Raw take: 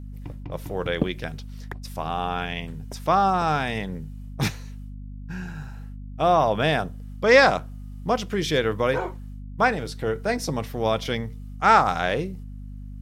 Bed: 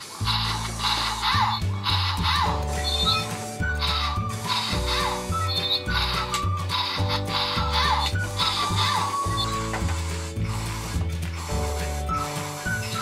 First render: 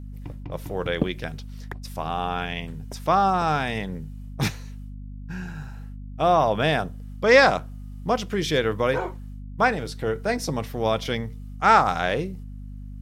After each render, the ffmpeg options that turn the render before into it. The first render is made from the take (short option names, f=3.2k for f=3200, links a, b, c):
-af anull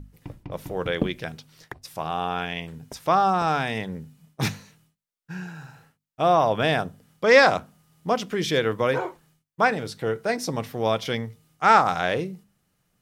-af "bandreject=f=50:t=h:w=6,bandreject=f=100:t=h:w=6,bandreject=f=150:t=h:w=6,bandreject=f=200:t=h:w=6,bandreject=f=250:t=h:w=6"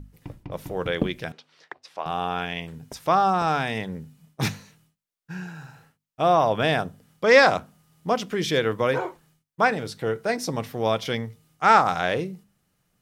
-filter_complex "[0:a]asettb=1/sr,asplit=3[a][b][c];[a]atrim=end=1.324[d];[b]atrim=start=1.32:end=2.06,asetpts=PTS-STARTPTS,afade=t=in:d=0.004:c=qsin,afade=t=out:st=0.736:d=0.004:c=qsin,highpass=430,lowpass=4k[e];[c]atrim=start=2.056[f];[d][e]acrossfade=d=0.004:c1=hsin:c2=qsin[g];[g][f]acrossfade=d=0.004:c1=qsin:c2=hsin"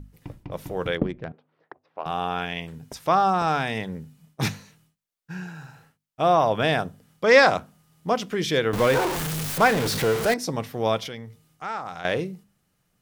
-filter_complex "[0:a]asplit=3[a][b][c];[a]afade=t=out:st=0.96:d=0.02[d];[b]adynamicsmooth=sensitivity=0.5:basefreq=940,afade=t=in:st=0.96:d=0.02,afade=t=out:st=2.04:d=0.02[e];[c]afade=t=in:st=2.04:d=0.02[f];[d][e][f]amix=inputs=3:normalize=0,asettb=1/sr,asplit=3[g][h][i];[g]atrim=end=8.734[j];[h]atrim=start=8.73:end=10.34,asetpts=PTS-STARTPTS,afade=t=in:d=0.004:c=qsin,afade=t=out:st=1.606:d=0.004:c=qsin,aeval=exprs='val(0)+0.5*0.0794*sgn(val(0))':c=same[k];[i]atrim=start=10.336[l];[j][k]acrossfade=d=0.004:c1=hsin:c2=qsin[m];[m][l]acrossfade=d=0.004:c1=qsin:c2=hsin,asettb=1/sr,asplit=3[n][o][p];[n]atrim=end=11.074[q];[o]atrim=start=11.07:end=12.05,asetpts=PTS-STARTPTS,afade=t=in:d=0.004:c=qsin,afade=t=out:st=0.976:d=0.004:c=qsin,acompressor=threshold=-40dB:ratio=2:attack=3.2:release=140:knee=1:detection=peak[r];[p]atrim=start=12.046[s];[q][r]acrossfade=d=0.004:c1=hsin:c2=qsin[t];[t][s]acrossfade=d=0.004:c1=qsin:c2=hsin"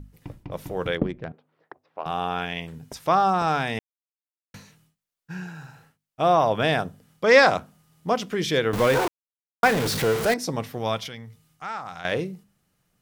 -filter_complex "[0:a]asettb=1/sr,asplit=3[a][b][c];[a]atrim=end=10.784[d];[b]atrim=start=10.78:end=12.12,asetpts=PTS-STARTPTS,afade=t=in:d=0.004:c=qsin,afade=t=out:st=1.336:d=0.004:c=qsin,equalizer=f=420:w=0.9:g=-6[e];[c]atrim=start=12.116[f];[d][e]acrossfade=d=0.004:c1=hsin:c2=qsin[g];[g][f]acrossfade=d=0.004:c1=qsin:c2=hsin,asplit=5[h][i][j][k][l];[h]atrim=end=3.79,asetpts=PTS-STARTPTS,afade=t=out:st=3.786:d=0.004:c=hsin[m];[i]atrim=start=3.79:end=4.54,asetpts=PTS-STARTPTS,volume=0[n];[j]atrim=start=4.54:end=9.08,asetpts=PTS-STARTPTS,afade=t=in:d=0.004:c=hsin,afade=t=out:st=4.536:d=0.004:c=hsin[o];[k]atrim=start=9.08:end=9.63,asetpts=PTS-STARTPTS,volume=0[p];[l]atrim=start=9.63,asetpts=PTS-STARTPTS,afade=t=in:d=0.004:c=hsin[q];[m][n][o][p][q]concat=n=5:v=0:a=1"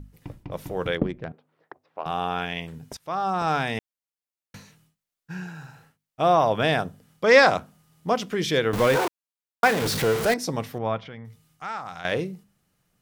-filter_complex "[0:a]asettb=1/sr,asplit=3[a][b][c];[a]atrim=end=8.964[d];[b]atrim=start=8.96:end=9.82,asetpts=PTS-STARTPTS,afade=t=in:d=0.004:c=qsin,afade=t=out:st=0.856:d=0.004:c=qsin,highpass=f=200:p=1[e];[c]atrim=start=9.816[f];[d][e]acrossfade=d=0.004:c1=hsin:c2=qsin[g];[g][f]acrossfade=d=0.004:c1=qsin:c2=hsin,asettb=1/sr,asplit=3[h][i][j];[h]atrim=end=10.784[k];[i]atrim=start=10.78:end=11.25,asetpts=PTS-STARTPTS,afade=t=in:d=0.004:c=qsin,afade=t=out:st=0.466:d=0.004:c=qsin,lowpass=1.8k[l];[j]atrim=start=11.246[m];[k][l]acrossfade=d=0.004:c1=hsin:c2=qsin[n];[n][m]acrossfade=d=0.004:c1=qsin:c2=hsin,asplit=2[o][p];[o]atrim=end=2.97,asetpts=PTS-STARTPTS,afade=t=out:st=2.966:d=0.004:c=hsin:silence=0.0841395[q];[p]atrim=start=2.97,asetpts=PTS-STARTPTS,afade=t=in:d=0.58:silence=0.0841395[r];[q][r]concat=n=2:v=0:a=1"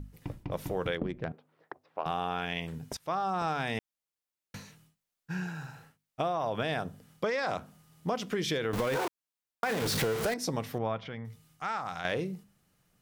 -af "alimiter=limit=-14.5dB:level=0:latency=1:release=24,acompressor=threshold=-28dB:ratio=6"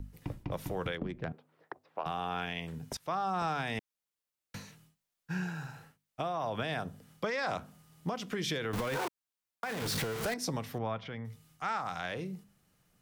-filter_complex "[0:a]acrossover=split=350|550|2200[a][b][c][d];[b]acompressor=threshold=-48dB:ratio=6[e];[a][e][c][d]amix=inputs=4:normalize=0,alimiter=limit=-23dB:level=0:latency=1:release=457"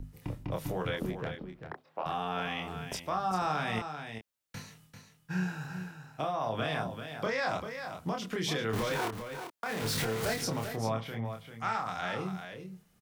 -filter_complex "[0:a]asplit=2[a][b];[b]adelay=27,volume=-3.5dB[c];[a][c]amix=inputs=2:normalize=0,aecho=1:1:393:0.376"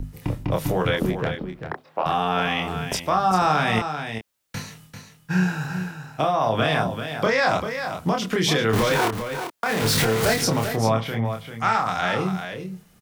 -af "volume=11.5dB"